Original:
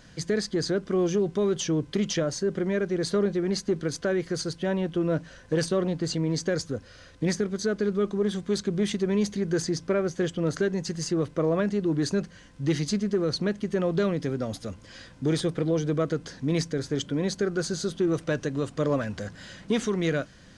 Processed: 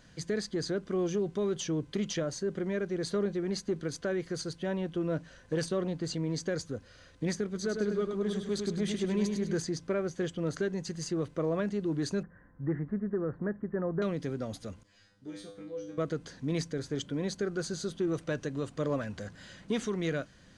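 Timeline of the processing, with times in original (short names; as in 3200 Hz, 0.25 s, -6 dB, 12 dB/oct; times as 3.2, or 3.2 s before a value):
7.45–9.6 feedback echo 0.102 s, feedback 40%, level -5.5 dB
12.23–14.02 Chebyshev low-pass 1800 Hz, order 5
14.83–15.98 resonator 100 Hz, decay 0.42 s, mix 100%
whole clip: notch 5300 Hz, Q 19; gain -6 dB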